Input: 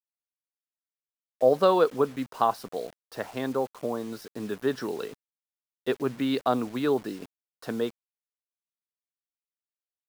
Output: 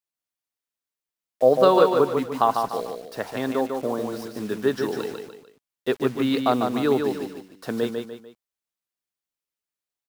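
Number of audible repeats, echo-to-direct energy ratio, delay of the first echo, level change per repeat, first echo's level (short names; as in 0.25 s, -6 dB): 3, -4.5 dB, 0.148 s, -8.0 dB, -5.0 dB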